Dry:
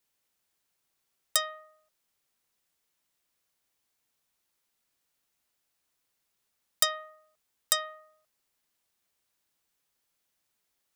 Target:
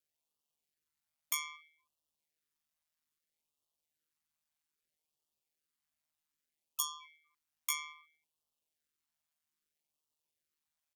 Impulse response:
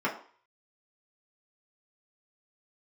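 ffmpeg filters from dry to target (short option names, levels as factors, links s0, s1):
-af "aeval=exprs='val(0)*sin(2*PI*43*n/s)':c=same,asetrate=78577,aresample=44100,atempo=0.561231,afftfilt=real='re*(1-between(b*sr/1024,380*pow(1900/380,0.5+0.5*sin(2*PI*0.62*pts/sr))/1.41,380*pow(1900/380,0.5+0.5*sin(2*PI*0.62*pts/sr))*1.41))':imag='im*(1-between(b*sr/1024,380*pow(1900/380,0.5+0.5*sin(2*PI*0.62*pts/sr))/1.41,380*pow(1900/380,0.5+0.5*sin(2*PI*0.62*pts/sr))*1.41))':win_size=1024:overlap=0.75,volume=0.631"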